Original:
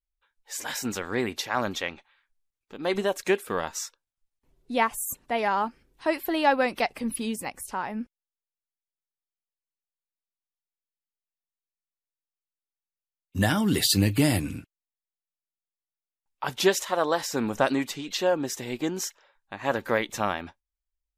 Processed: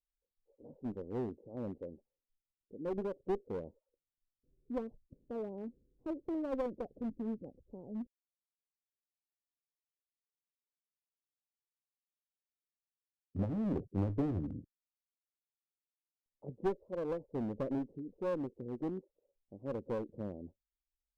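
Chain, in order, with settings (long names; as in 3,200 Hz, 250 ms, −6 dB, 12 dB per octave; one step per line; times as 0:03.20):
elliptic low-pass filter 520 Hz, stop band 70 dB
asymmetric clip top −29.5 dBFS, bottom −16 dBFS
level −6.5 dB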